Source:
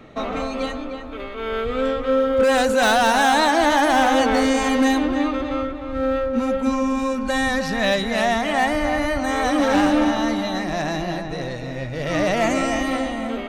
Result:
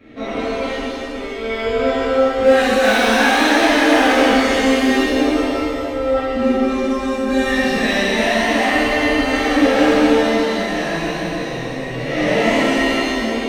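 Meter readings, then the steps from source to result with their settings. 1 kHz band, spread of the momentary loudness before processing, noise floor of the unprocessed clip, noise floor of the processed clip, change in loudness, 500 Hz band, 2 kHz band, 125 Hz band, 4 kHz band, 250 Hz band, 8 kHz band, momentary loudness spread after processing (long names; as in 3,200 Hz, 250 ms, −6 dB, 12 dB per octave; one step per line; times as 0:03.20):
+0.5 dB, 11 LU, −31 dBFS, −26 dBFS, +4.0 dB, +4.5 dB, +5.5 dB, +1.5 dB, +5.0 dB, +4.0 dB, +2.0 dB, 10 LU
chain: octave-band graphic EQ 125/250/500/1,000/2,000/8,000 Hz −5/+6/+3/−8/+7/−4 dB
reverb with rising layers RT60 1.7 s, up +7 semitones, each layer −8 dB, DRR −11.5 dB
level −10 dB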